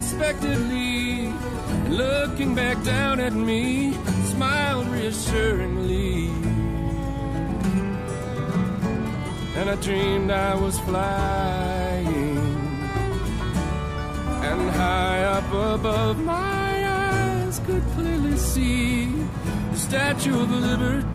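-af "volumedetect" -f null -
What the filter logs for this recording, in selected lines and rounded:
mean_volume: -23.2 dB
max_volume: -10.5 dB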